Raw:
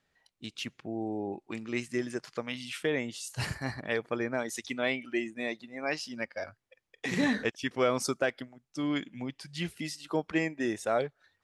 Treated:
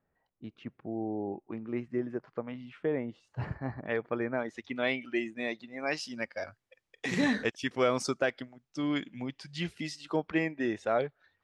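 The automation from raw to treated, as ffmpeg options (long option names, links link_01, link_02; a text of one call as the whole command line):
ffmpeg -i in.wav -af "asetnsamples=nb_out_samples=441:pad=0,asendcmd='3.86 lowpass f 2000;4.76 lowpass f 5300;5.8 lowpass f 10000;8.02 lowpass f 6200;10.16 lowpass f 3500',lowpass=1100" out.wav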